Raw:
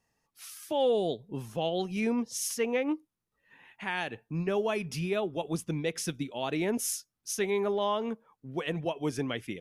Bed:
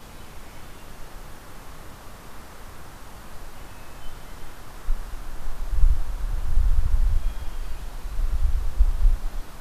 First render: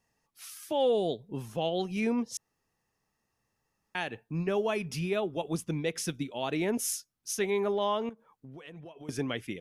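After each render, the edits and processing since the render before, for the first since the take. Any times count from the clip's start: 2.37–3.95 s: room tone; 8.09–9.09 s: compression 10:1, threshold -43 dBFS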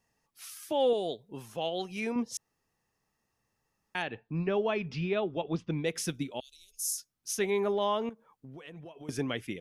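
0.93–2.16 s: bass shelf 350 Hz -9.5 dB; 4.02–5.84 s: low-pass 4.3 kHz 24 dB/octave; 6.40–6.98 s: inverse Chebyshev band-stop 120–1900 Hz, stop band 50 dB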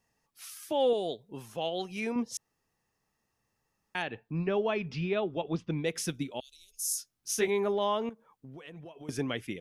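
6.89–7.48 s: doubling 18 ms -2.5 dB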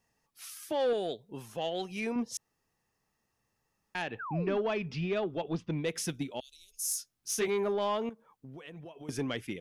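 saturation -23 dBFS, distortion -17 dB; 4.19–4.57 s: painted sound fall 210–1700 Hz -39 dBFS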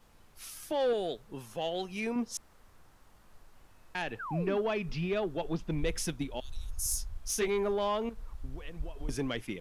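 add bed -19.5 dB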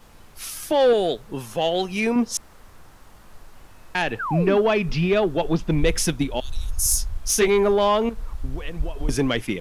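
trim +12 dB

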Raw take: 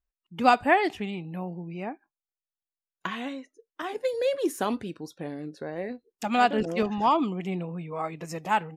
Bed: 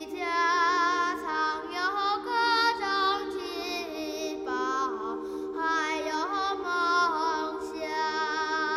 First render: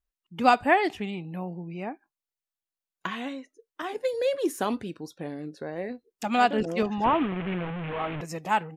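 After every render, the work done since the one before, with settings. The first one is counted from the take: 7.04–8.21 s: one-bit delta coder 16 kbps, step -27 dBFS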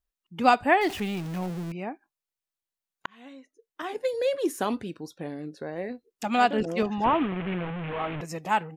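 0.81–1.72 s: jump at every zero crossing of -34 dBFS; 3.06–3.91 s: fade in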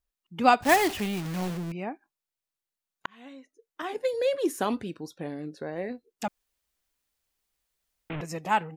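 0.62–1.59 s: block-companded coder 3-bit; 6.28–8.10 s: room tone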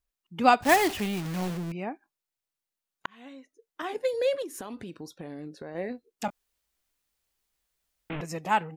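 4.42–5.75 s: compression 8:1, threshold -35 dBFS; 6.26–8.20 s: doubling 22 ms -8 dB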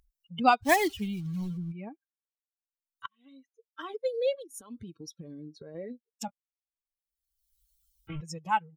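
expander on every frequency bin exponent 2; upward compressor, threshold -31 dBFS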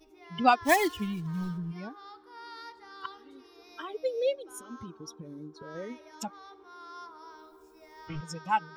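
add bed -21 dB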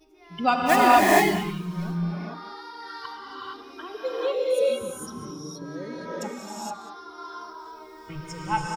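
echo from a far wall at 33 m, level -13 dB; gated-style reverb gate 490 ms rising, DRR -6 dB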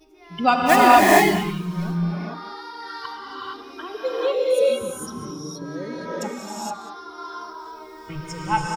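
trim +4 dB; peak limiter -2 dBFS, peak gain reduction 1 dB

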